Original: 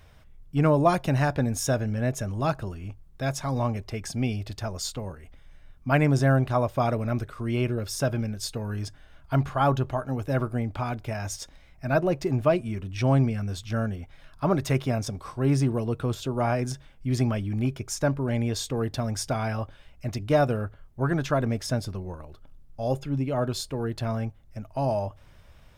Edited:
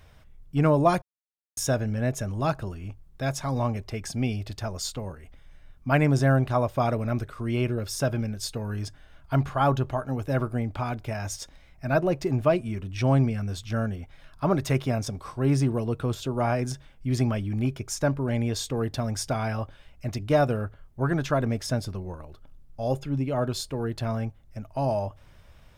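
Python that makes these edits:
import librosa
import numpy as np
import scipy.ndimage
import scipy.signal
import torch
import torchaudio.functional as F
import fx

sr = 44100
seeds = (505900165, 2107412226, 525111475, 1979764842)

y = fx.edit(x, sr, fx.silence(start_s=1.02, length_s=0.55), tone=tone)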